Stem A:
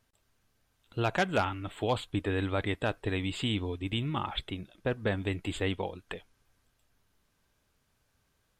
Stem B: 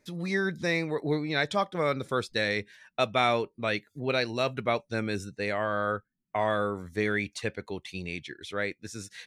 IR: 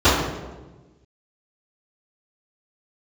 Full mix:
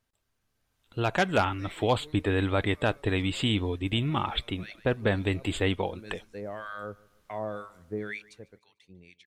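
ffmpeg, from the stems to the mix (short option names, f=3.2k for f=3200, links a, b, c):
-filter_complex "[0:a]dynaudnorm=f=380:g=5:m=10.5dB,volume=-6dB,asplit=2[a][b];[1:a]acrossover=split=1000[c][d];[c]aeval=exprs='val(0)*(1-1/2+1/2*cos(2*PI*2*n/s))':c=same[e];[d]aeval=exprs='val(0)*(1-1/2-1/2*cos(2*PI*2*n/s))':c=same[f];[e][f]amix=inputs=2:normalize=0,adelay=950,volume=-4dB,afade=t=out:st=8.15:d=0.25:silence=0.334965,asplit=2[g][h];[h]volume=-23dB[i];[b]apad=whole_len=450289[j];[g][j]sidechaincompress=threshold=-45dB:ratio=10:attack=24:release=192[k];[i]aecho=0:1:148|296|444|592|740:1|0.39|0.152|0.0593|0.0231[l];[a][k][l]amix=inputs=3:normalize=0"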